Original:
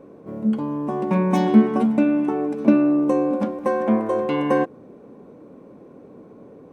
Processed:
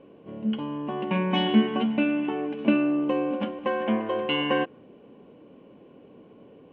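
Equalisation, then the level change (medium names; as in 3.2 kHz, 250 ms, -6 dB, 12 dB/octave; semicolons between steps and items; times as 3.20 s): band-stop 1.3 kHz, Q 13; dynamic bell 1.7 kHz, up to +4 dB, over -41 dBFS, Q 1.2; four-pole ladder low-pass 3.1 kHz, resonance 85%; +6.5 dB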